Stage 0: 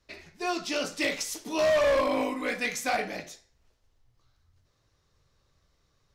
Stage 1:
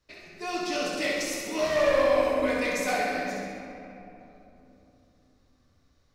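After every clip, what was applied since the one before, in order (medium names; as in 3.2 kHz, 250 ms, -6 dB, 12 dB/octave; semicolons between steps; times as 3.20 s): on a send: flutter echo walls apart 11.4 m, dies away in 0.87 s; on the sum: simulated room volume 150 m³, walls hard, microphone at 0.42 m; trim -3.5 dB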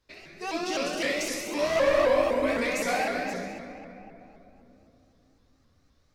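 vibrato with a chosen wave saw up 3.9 Hz, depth 160 cents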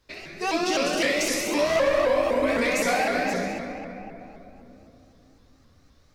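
compression 3:1, threshold -28 dBFS, peak gain reduction 7.5 dB; trim +7.5 dB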